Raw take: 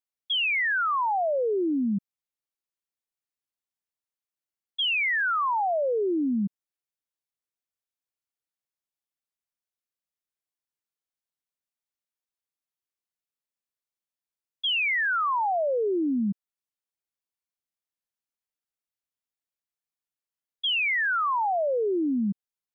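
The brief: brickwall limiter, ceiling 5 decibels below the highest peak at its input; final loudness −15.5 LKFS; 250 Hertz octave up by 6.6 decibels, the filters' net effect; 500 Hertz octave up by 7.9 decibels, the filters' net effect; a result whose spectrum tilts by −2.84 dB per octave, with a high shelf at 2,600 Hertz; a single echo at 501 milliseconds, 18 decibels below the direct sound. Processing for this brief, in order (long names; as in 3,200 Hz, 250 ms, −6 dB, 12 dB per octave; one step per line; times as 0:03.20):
parametric band 250 Hz +5.5 dB
parametric band 500 Hz +8.5 dB
high-shelf EQ 2,600 Hz −6 dB
brickwall limiter −17.5 dBFS
single-tap delay 501 ms −18 dB
level +8 dB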